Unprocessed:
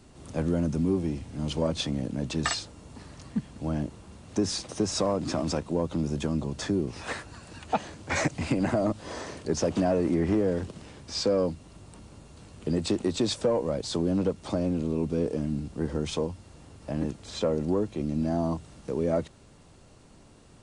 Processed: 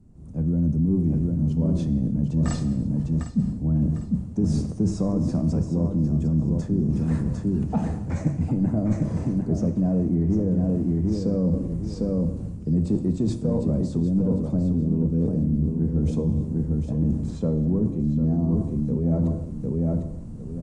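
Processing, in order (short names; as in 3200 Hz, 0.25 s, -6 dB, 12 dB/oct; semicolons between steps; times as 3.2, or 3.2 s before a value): EQ curve 190 Hz 0 dB, 1800 Hz -18 dB, 3400 Hz -20 dB, 7300 Hz -4 dB; on a send: feedback echo 0.752 s, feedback 21%, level -7 dB; on the sum: AGC gain up to 15 dB; tone controls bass +9 dB, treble -11 dB; non-linear reverb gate 0.34 s falling, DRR 8 dB; reverse; compressor, threshold -15 dBFS, peak gain reduction 12.5 dB; reverse; notches 60/120 Hz; gain -4.5 dB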